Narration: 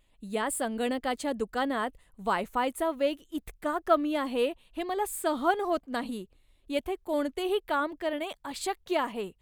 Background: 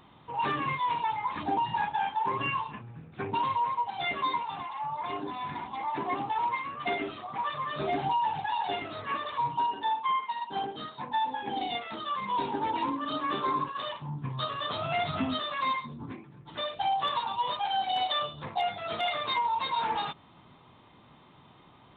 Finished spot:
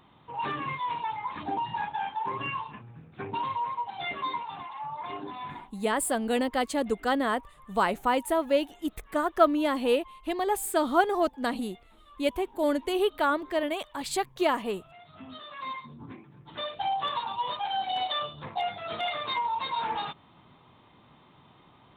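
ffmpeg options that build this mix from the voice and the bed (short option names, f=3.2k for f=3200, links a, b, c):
-filter_complex "[0:a]adelay=5500,volume=3dB[a];[1:a]volume=19dB,afade=t=out:st=5.51:d=0.21:silence=0.1,afade=t=in:st=15.08:d=1.37:silence=0.0841395[b];[a][b]amix=inputs=2:normalize=0"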